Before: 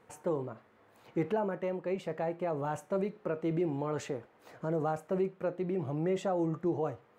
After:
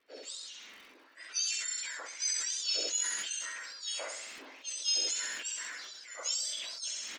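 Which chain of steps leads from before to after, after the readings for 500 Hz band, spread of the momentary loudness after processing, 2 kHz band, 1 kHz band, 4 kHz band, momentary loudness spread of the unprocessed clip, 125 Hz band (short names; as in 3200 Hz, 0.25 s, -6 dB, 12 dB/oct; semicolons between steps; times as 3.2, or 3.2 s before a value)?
-19.0 dB, 14 LU, +7.0 dB, -13.0 dB, +23.0 dB, 5 LU, under -40 dB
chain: spectrum mirrored in octaves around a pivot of 2000 Hz; steep low-pass 6900 Hz 36 dB/oct; low-pass opened by the level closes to 1700 Hz, open at -38.5 dBFS; HPF 480 Hz 6 dB/oct; high shelf 2300 Hz +8 dB; crackle 140/s -65 dBFS; on a send: feedback echo 65 ms, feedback 31%, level -7 dB; on the sum: sustainer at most 25 dB/s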